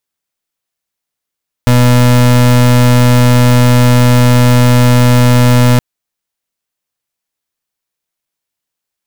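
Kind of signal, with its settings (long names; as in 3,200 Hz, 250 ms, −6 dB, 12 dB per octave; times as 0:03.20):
pulse wave 123 Hz, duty 32% −6.5 dBFS 4.12 s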